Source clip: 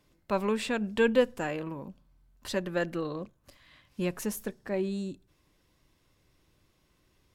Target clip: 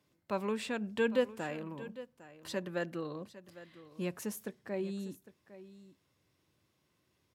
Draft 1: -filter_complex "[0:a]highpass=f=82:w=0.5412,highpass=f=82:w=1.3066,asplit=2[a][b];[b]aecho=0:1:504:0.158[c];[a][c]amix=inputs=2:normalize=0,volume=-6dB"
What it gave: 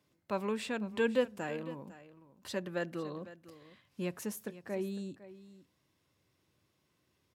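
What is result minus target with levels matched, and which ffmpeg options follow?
echo 0.301 s early
-filter_complex "[0:a]highpass=f=82:w=0.5412,highpass=f=82:w=1.3066,asplit=2[a][b];[b]aecho=0:1:805:0.158[c];[a][c]amix=inputs=2:normalize=0,volume=-6dB"

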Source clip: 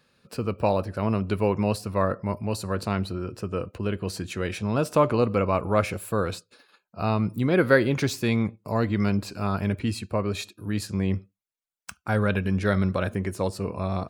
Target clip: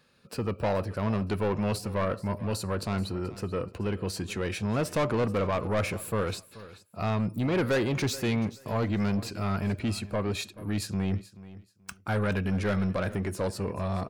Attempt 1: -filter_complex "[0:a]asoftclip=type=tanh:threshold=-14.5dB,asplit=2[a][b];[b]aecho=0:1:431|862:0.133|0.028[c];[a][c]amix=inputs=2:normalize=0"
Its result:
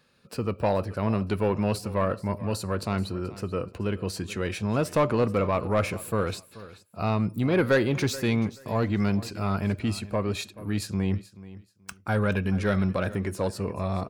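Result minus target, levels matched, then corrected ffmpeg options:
soft clip: distortion -7 dB
-filter_complex "[0:a]asoftclip=type=tanh:threshold=-22dB,asplit=2[a][b];[b]aecho=0:1:431|862:0.133|0.028[c];[a][c]amix=inputs=2:normalize=0"

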